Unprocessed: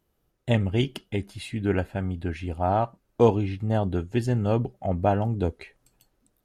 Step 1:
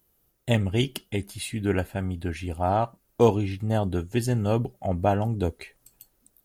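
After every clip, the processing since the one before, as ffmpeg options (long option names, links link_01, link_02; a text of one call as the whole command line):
ffmpeg -i in.wav -af "aemphasis=mode=production:type=50fm" out.wav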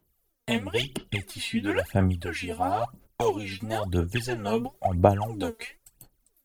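ffmpeg -i in.wav -filter_complex "[0:a]agate=range=-12dB:threshold=-51dB:ratio=16:detection=peak,acrossover=split=83|550|4700[link_01][link_02][link_03][link_04];[link_01]acompressor=threshold=-49dB:ratio=4[link_05];[link_02]acompressor=threshold=-36dB:ratio=4[link_06];[link_03]acompressor=threshold=-33dB:ratio=4[link_07];[link_04]acompressor=threshold=-51dB:ratio=4[link_08];[link_05][link_06][link_07][link_08]amix=inputs=4:normalize=0,aphaser=in_gain=1:out_gain=1:delay=4.5:decay=0.77:speed=0.99:type=sinusoidal,volume=2.5dB" out.wav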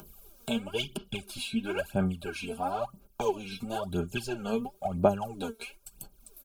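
ffmpeg -i in.wav -af "aecho=1:1:5:0.59,acompressor=mode=upward:threshold=-27dB:ratio=2.5,asuperstop=centerf=1900:order=12:qfactor=3.4,volume=-5.5dB" out.wav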